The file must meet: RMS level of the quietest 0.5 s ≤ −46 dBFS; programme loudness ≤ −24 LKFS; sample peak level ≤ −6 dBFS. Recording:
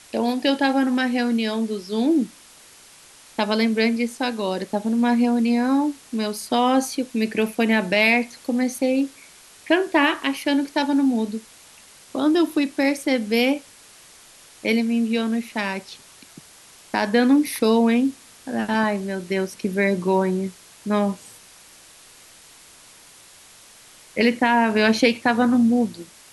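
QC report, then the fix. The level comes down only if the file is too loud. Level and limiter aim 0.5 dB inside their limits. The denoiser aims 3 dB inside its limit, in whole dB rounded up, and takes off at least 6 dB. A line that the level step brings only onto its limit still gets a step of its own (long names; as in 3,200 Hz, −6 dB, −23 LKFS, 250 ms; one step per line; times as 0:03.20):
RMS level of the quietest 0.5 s −48 dBFS: in spec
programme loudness −21.5 LKFS: out of spec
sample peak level −4.5 dBFS: out of spec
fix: level −3 dB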